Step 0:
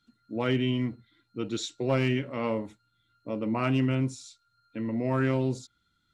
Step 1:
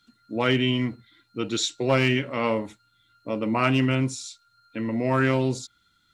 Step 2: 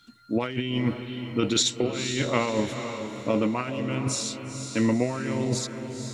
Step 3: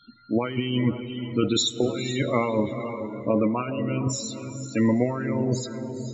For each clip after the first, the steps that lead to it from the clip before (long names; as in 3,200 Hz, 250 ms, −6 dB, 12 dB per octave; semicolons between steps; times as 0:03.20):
tilt shelving filter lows −3.5 dB, about 740 Hz; level +6 dB
compressor whose output falls as the input rises −27 dBFS, ratio −0.5; feedback delay with all-pass diffusion 478 ms, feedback 44%, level −8 dB; level +2 dB
spectral peaks only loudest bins 32; convolution reverb RT60 3.4 s, pre-delay 45 ms, DRR 17.5 dB; level +2 dB